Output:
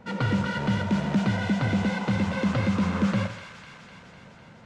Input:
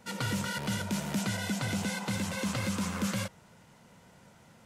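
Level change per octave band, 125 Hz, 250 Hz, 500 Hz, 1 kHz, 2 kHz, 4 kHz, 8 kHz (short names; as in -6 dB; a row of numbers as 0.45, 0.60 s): +8.5, +8.5, +7.5, +6.5, +5.0, 0.0, -10.0 dB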